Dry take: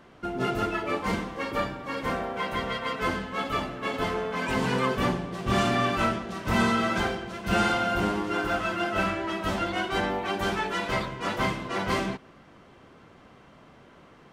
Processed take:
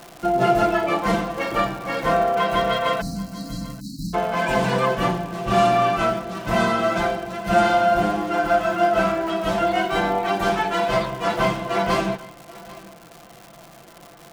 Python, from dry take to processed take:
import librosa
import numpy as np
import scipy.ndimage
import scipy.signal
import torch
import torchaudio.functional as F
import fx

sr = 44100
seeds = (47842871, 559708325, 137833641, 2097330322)

p1 = x + 0.61 * np.pad(x, (int(5.9 * sr / 1000.0), 0))[:len(x)]
p2 = fx.dmg_crackle(p1, sr, seeds[0], per_s=290.0, level_db=-35.0)
p3 = fx.spec_erase(p2, sr, start_s=3.01, length_s=1.13, low_hz=320.0, high_hz=3900.0)
p4 = fx.rider(p3, sr, range_db=4, speed_s=2.0)
p5 = fx.peak_eq(p4, sr, hz=700.0, db=10.0, octaves=0.33)
p6 = p5 + fx.echo_single(p5, sr, ms=789, db=-20.5, dry=0)
y = F.gain(torch.from_numpy(p6), 2.0).numpy()